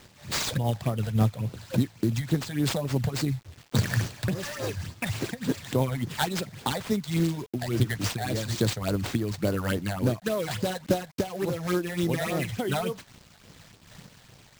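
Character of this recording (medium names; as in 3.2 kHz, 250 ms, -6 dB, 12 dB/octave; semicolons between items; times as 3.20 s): a quantiser's noise floor 8-bit, dither none; phasing stages 8, 3.5 Hz, lowest notch 320–2800 Hz; aliases and images of a low sample rate 12 kHz, jitter 20%; random flutter of the level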